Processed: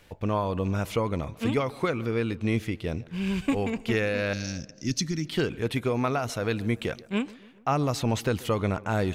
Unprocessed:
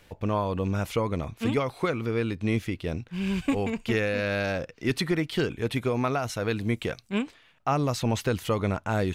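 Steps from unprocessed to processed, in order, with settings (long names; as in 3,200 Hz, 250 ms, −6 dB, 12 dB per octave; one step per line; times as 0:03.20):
0:04.33–0:05.25: drawn EQ curve 280 Hz 0 dB, 510 Hz −23 dB, 3,700 Hz −4 dB, 6,100 Hz +15 dB, 8,800 Hz −6 dB
tape delay 139 ms, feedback 67%, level −19 dB, low-pass 1,800 Hz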